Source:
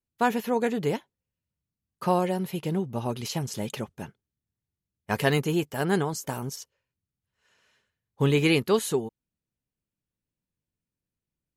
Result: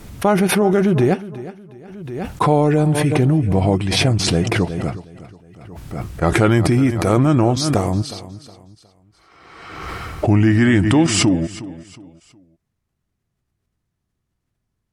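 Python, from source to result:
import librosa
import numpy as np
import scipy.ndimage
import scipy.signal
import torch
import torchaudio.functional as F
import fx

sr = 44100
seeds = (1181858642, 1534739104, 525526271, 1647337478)

p1 = fx.speed_glide(x, sr, from_pct=85, to_pct=70)
p2 = fx.over_compress(p1, sr, threshold_db=-28.0, ratio=-1.0)
p3 = p1 + F.gain(torch.from_numpy(p2), 0.5).numpy()
p4 = fx.high_shelf(p3, sr, hz=2100.0, db=-10.0)
p5 = fx.echo_feedback(p4, sr, ms=364, feedback_pct=33, wet_db=-16.0)
p6 = fx.pre_swell(p5, sr, db_per_s=39.0)
y = F.gain(torch.from_numpy(p6), 6.0).numpy()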